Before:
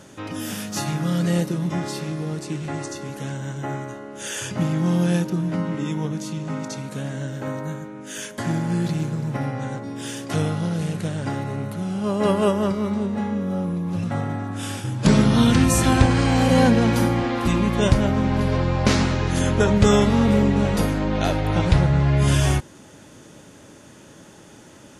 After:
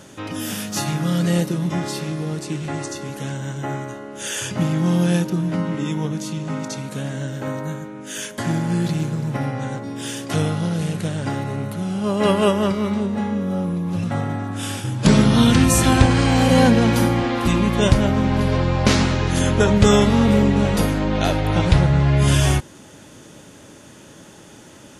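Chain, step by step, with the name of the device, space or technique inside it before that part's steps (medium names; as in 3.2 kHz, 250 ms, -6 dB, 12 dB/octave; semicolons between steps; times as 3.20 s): 12.17–13.01 s: peaking EQ 2.5 kHz +4 dB 1.4 oct; presence and air boost (peaking EQ 3.2 kHz +2 dB; treble shelf 9.8 kHz +4 dB); trim +2 dB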